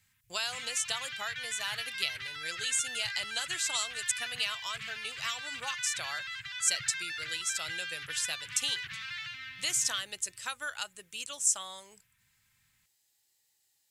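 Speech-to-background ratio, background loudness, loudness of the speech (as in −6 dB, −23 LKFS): 5.0 dB, −38.0 LKFS, −33.0 LKFS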